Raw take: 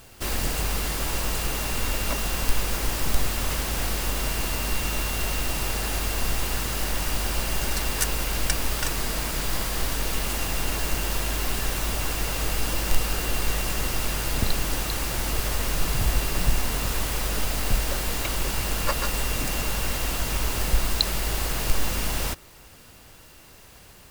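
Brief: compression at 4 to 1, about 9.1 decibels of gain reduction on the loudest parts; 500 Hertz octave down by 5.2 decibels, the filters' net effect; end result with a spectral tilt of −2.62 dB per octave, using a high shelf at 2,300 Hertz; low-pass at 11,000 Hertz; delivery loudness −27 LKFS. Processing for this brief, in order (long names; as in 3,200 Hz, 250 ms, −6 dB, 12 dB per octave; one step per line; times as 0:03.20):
low-pass filter 11,000 Hz
parametric band 500 Hz −7 dB
high-shelf EQ 2,300 Hz +3.5 dB
downward compressor 4 to 1, threshold −25 dBFS
level +3 dB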